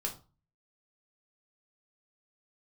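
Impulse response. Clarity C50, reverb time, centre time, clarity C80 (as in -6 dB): 12.0 dB, 0.35 s, 14 ms, 18.0 dB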